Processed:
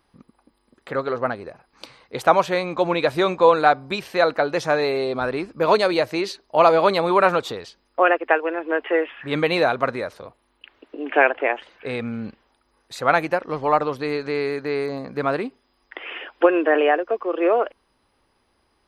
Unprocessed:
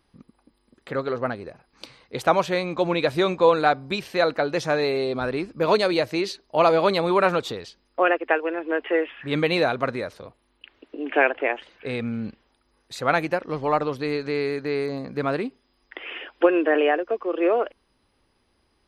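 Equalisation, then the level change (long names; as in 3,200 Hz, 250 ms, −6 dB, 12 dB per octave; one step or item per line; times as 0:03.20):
parametric band 970 Hz +6 dB 2.3 octaves
high-shelf EQ 7,400 Hz +4.5 dB
−1.5 dB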